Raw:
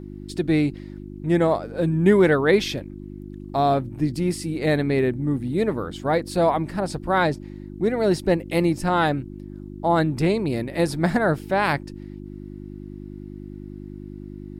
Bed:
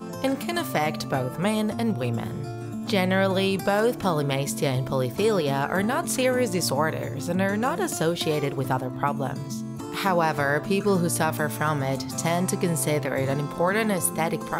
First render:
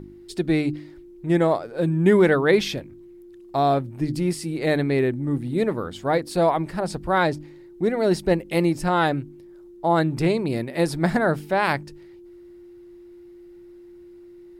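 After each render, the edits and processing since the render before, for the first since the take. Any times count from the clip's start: de-hum 50 Hz, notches 6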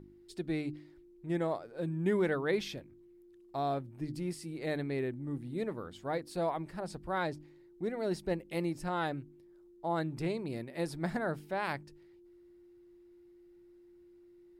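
trim -13.5 dB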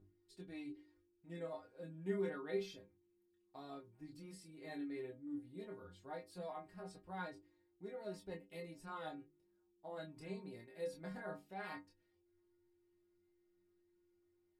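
inharmonic resonator 93 Hz, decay 0.31 s, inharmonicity 0.008; chorus 0.15 Hz, depth 3.7 ms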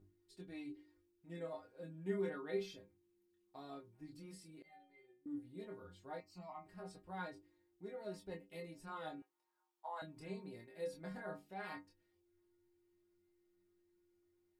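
4.62–5.26 s: inharmonic resonator 180 Hz, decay 0.58 s, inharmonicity 0.008; 6.20–6.66 s: static phaser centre 2.4 kHz, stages 8; 9.22–10.02 s: resonant high-pass 930 Hz, resonance Q 4.4

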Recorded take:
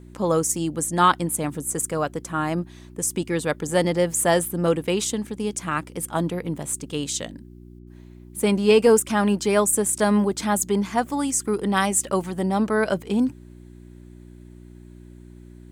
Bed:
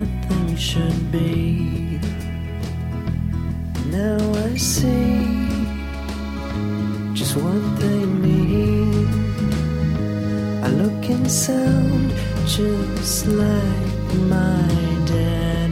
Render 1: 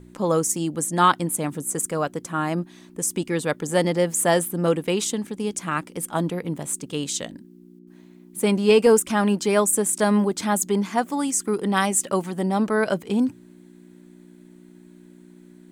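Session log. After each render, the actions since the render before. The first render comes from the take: de-hum 60 Hz, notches 2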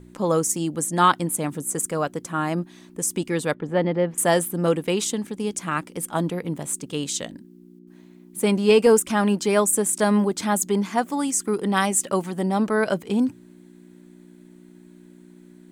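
3.54–4.18 s: distance through air 390 m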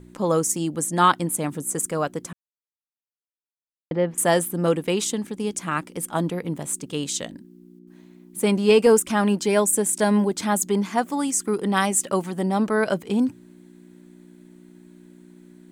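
2.33–3.91 s: mute; 9.44–10.32 s: band-stop 1.2 kHz, Q 5.9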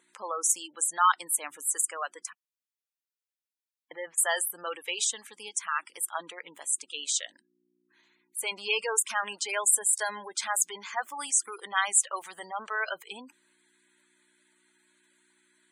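high-pass 1.3 kHz 12 dB/octave; spectral gate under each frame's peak -15 dB strong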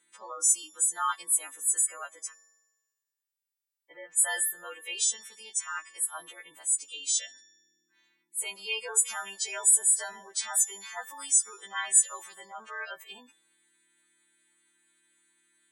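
partials quantised in pitch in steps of 2 st; feedback comb 160 Hz, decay 1.2 s, mix 60%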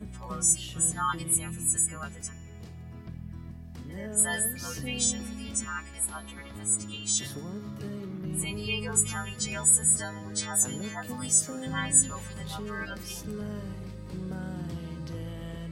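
add bed -18.5 dB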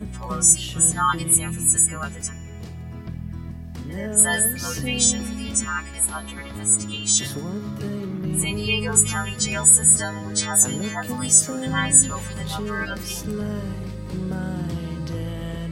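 trim +8.5 dB; peak limiter -2 dBFS, peak gain reduction 2 dB

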